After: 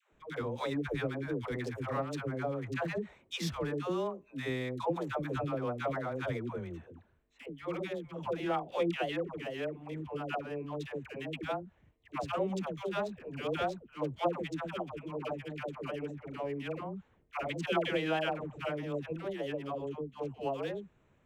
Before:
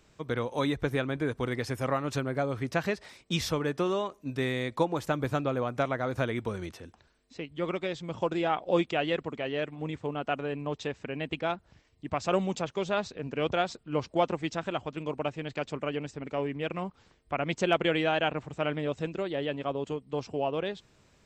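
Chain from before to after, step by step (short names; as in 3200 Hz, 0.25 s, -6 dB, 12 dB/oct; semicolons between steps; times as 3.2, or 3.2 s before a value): Wiener smoothing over 9 samples; dispersion lows, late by 0.12 s, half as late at 580 Hz; gain -5 dB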